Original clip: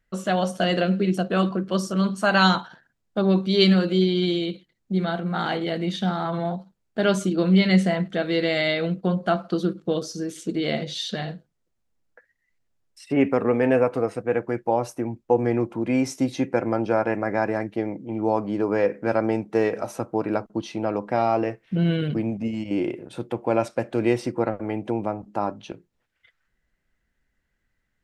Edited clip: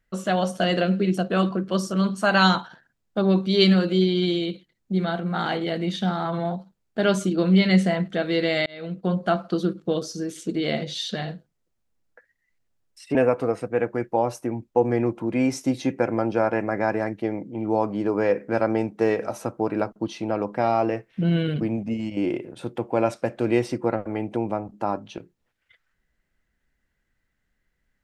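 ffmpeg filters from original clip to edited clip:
ffmpeg -i in.wav -filter_complex "[0:a]asplit=3[link_01][link_02][link_03];[link_01]atrim=end=8.66,asetpts=PTS-STARTPTS,afade=type=out:start_time=8.656:duration=0.004:curve=hsin[link_04];[link_02]atrim=start=8.66:end=13.152,asetpts=PTS-STARTPTS,afade=type=in:duration=0.48[link_05];[link_03]atrim=start=13.688[link_06];[link_04][link_05]concat=n=2:v=0:a=1[link_07];[link_07][link_06]acrossfade=duration=0.004:curve1=hsin:curve2=hsin" out.wav

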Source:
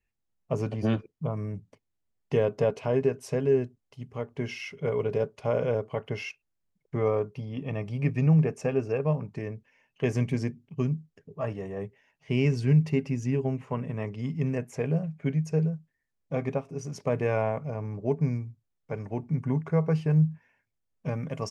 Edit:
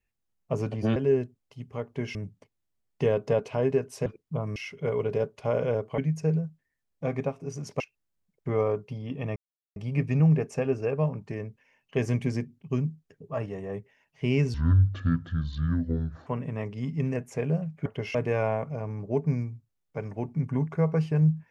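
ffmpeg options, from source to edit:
ffmpeg -i in.wav -filter_complex "[0:a]asplit=12[link_01][link_02][link_03][link_04][link_05][link_06][link_07][link_08][link_09][link_10][link_11][link_12];[link_01]atrim=end=0.962[link_13];[link_02]atrim=start=3.368:end=4.562[link_14];[link_03]atrim=start=1.458:end=3.372[link_15];[link_04]atrim=start=0.958:end=1.462[link_16];[link_05]atrim=start=4.558:end=5.982[link_17];[link_06]atrim=start=15.268:end=17.092[link_18];[link_07]atrim=start=6.268:end=7.83,asetpts=PTS-STARTPTS,afade=type=out:start_time=1.558:duration=0.004:curve=hsin,apad=pad_dur=0.4[link_19];[link_08]atrim=start=7.83:end=12.614,asetpts=PTS-STARTPTS,afade=type=in:duration=0.004:curve=hsin[link_20];[link_09]atrim=start=12.61:end=13.68,asetpts=PTS-STARTPTS,asetrate=27342,aresample=44100,atrim=end_sample=76108,asetpts=PTS-STARTPTS[link_21];[link_10]atrim=start=13.676:end=15.272[link_22];[link_11]atrim=start=5.978:end=6.272[link_23];[link_12]atrim=start=17.088[link_24];[link_13][link_14]acrossfade=duration=0.004:curve1=hsin:curve2=hsin[link_25];[link_25][link_15]acrossfade=duration=0.004:curve1=hsin:curve2=hsin[link_26];[link_26][link_16]acrossfade=duration=0.004:curve1=hsin:curve2=hsin[link_27];[link_27][link_17]acrossfade=duration=0.004:curve1=hsin:curve2=hsin[link_28];[link_28][link_18]acrossfade=duration=0.004:curve1=hsin:curve2=hsin[link_29];[link_19][link_20]concat=n=2:v=0:a=1[link_30];[link_29][link_30]acrossfade=duration=0.004:curve1=hsin:curve2=hsin[link_31];[link_31][link_21]acrossfade=duration=0.004:curve1=hsin:curve2=hsin[link_32];[link_32][link_22]acrossfade=duration=0.004:curve1=hsin:curve2=hsin[link_33];[link_33][link_23]acrossfade=duration=0.004:curve1=hsin:curve2=hsin[link_34];[link_34][link_24]acrossfade=duration=0.004:curve1=hsin:curve2=hsin" out.wav

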